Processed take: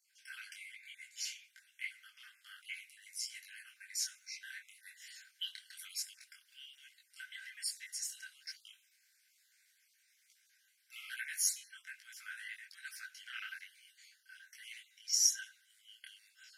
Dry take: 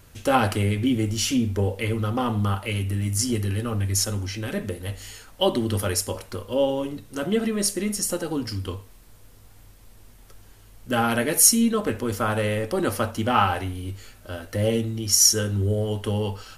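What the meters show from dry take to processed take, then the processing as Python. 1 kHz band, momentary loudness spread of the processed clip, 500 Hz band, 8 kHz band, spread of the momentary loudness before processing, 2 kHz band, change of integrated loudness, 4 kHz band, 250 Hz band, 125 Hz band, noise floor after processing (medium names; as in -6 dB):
-38.5 dB, 22 LU, under -40 dB, -14.0 dB, 15 LU, -13.0 dB, -16.5 dB, -13.0 dB, under -40 dB, under -40 dB, -73 dBFS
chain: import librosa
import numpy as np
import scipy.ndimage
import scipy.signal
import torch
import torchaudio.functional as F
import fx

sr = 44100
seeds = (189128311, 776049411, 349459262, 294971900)

y = fx.spec_dropout(x, sr, seeds[0], share_pct=27)
y = fx.high_shelf(y, sr, hz=3800.0, db=-5.5)
y = fx.rider(y, sr, range_db=3, speed_s=2.0)
y = scipy.signal.sosfilt(scipy.signal.cheby1(6, 6, 1500.0, 'highpass', fs=sr, output='sos'), y)
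y = fx.detune_double(y, sr, cents=40)
y = y * librosa.db_to_amplitude(-3.5)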